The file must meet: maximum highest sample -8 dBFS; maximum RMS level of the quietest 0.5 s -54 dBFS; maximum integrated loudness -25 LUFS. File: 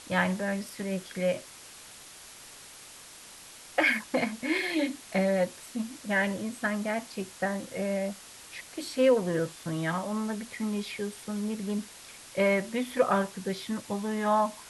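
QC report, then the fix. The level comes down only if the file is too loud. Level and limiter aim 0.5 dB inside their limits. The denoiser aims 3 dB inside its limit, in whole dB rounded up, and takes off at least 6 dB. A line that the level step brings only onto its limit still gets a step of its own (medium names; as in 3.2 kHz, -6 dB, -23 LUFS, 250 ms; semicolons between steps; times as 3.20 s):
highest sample -12.0 dBFS: pass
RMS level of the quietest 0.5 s -49 dBFS: fail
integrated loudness -30.0 LUFS: pass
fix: noise reduction 8 dB, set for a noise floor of -49 dBFS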